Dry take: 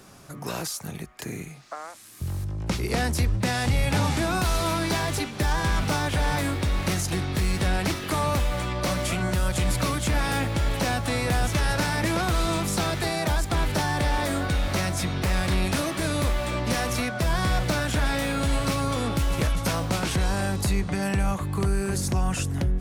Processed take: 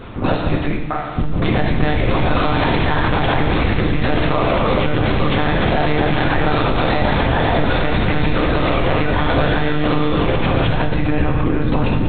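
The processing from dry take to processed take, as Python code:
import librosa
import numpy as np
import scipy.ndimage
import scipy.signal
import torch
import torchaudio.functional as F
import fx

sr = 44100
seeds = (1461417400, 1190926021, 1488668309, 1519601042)

p1 = fx.octave_divider(x, sr, octaves=1, level_db=-4.0)
p2 = p1 + fx.echo_single(p1, sr, ms=126, db=-20.5, dry=0)
p3 = fx.stretch_grains(p2, sr, factor=0.53, grain_ms=73.0)
p4 = scipy.signal.sosfilt(scipy.signal.butter(2, 110.0, 'highpass', fs=sr, output='sos'), p3)
p5 = fx.low_shelf(p4, sr, hz=470.0, db=3.5)
p6 = fx.lpc_monotone(p5, sr, seeds[0], pitch_hz=150.0, order=10)
p7 = fx.rev_gated(p6, sr, seeds[1], gate_ms=440, shape='falling', drr_db=1.0)
p8 = p7 * (1.0 - 0.31 / 2.0 + 0.31 / 2.0 * np.cos(2.0 * np.pi * 1.7 * (np.arange(len(p7)) / sr)))
p9 = fx.over_compress(p8, sr, threshold_db=-31.0, ratio=-1.0)
p10 = p8 + (p9 * librosa.db_to_amplitude(3.0))
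y = p10 * librosa.db_to_amplitude(5.0)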